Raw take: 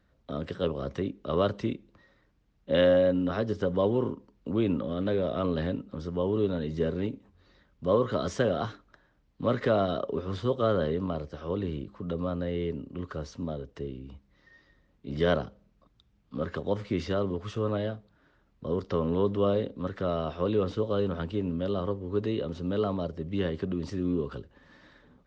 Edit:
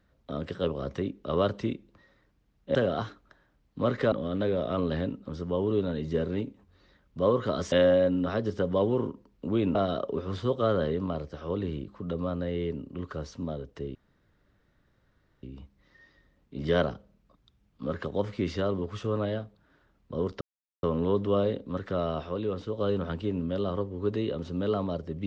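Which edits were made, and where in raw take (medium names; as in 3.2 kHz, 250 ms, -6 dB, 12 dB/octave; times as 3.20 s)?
2.75–4.78 s: swap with 8.38–9.75 s
13.95 s: insert room tone 1.48 s
18.93 s: insert silence 0.42 s
20.39–20.88 s: gain -4.5 dB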